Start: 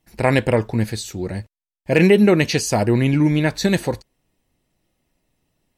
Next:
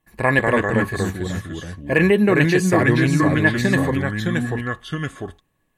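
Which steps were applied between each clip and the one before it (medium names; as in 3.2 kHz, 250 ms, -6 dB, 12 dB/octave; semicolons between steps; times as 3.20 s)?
ever faster or slower copies 166 ms, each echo -2 st, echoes 2; peaking EQ 5.2 kHz -10 dB 0.52 oct; small resonant body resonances 1.1/1.7 kHz, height 17 dB, ringing for 60 ms; trim -3 dB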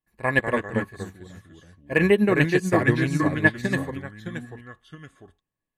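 upward expansion 2.5:1, over -24 dBFS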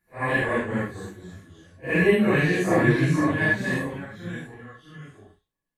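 phase randomisation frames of 200 ms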